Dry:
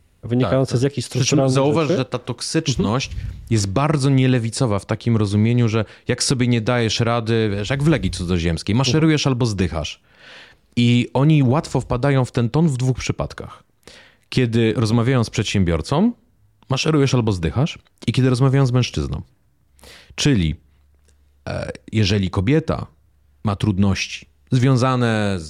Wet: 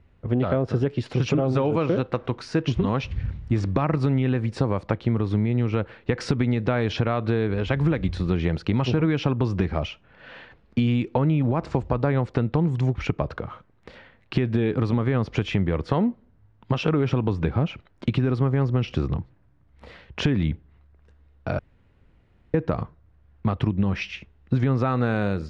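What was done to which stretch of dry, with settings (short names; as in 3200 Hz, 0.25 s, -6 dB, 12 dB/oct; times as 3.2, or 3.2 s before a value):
21.59–22.54 room tone
whole clip: LPF 2200 Hz 12 dB/oct; compressor, threshold -18 dBFS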